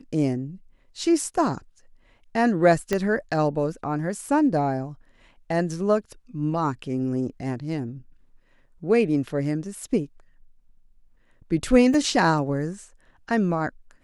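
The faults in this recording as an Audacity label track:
2.930000	2.930000	pop -10 dBFS
11.940000	11.940000	gap 2 ms

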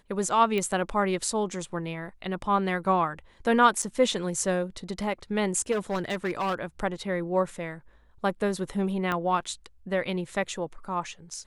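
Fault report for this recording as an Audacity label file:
0.580000	0.580000	pop -17 dBFS
3.820000	3.830000	gap 5.7 ms
5.710000	6.550000	clipped -24 dBFS
9.120000	9.120000	pop -15 dBFS

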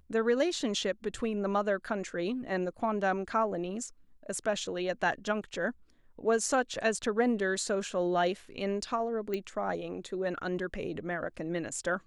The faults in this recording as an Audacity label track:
9.340000	9.340000	pop -21 dBFS

